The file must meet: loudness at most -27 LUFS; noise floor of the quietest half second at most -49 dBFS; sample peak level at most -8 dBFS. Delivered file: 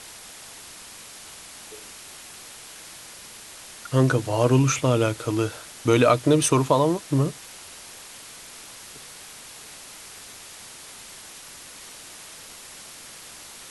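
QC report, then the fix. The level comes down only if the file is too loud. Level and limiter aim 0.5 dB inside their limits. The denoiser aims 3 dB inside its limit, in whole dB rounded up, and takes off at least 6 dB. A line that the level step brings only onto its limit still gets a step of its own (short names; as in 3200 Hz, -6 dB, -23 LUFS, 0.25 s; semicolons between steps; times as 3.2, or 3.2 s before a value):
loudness -21.5 LUFS: fail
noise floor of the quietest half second -43 dBFS: fail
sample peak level -5.0 dBFS: fail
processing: denoiser 6 dB, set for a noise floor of -43 dBFS; gain -6 dB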